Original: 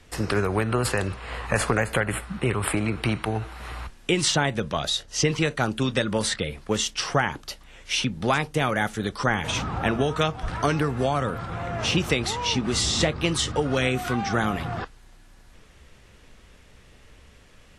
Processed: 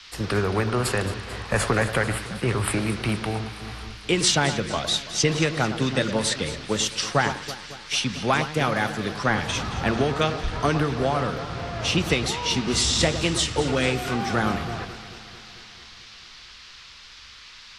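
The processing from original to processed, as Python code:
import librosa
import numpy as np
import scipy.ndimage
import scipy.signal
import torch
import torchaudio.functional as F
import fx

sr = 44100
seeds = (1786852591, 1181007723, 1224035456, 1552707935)

y = fx.echo_alternate(x, sr, ms=111, hz=1700.0, feedback_pct=84, wet_db=-10.0)
y = fx.dmg_noise_band(y, sr, seeds[0], low_hz=980.0, high_hz=5100.0, level_db=-40.0)
y = fx.band_widen(y, sr, depth_pct=40)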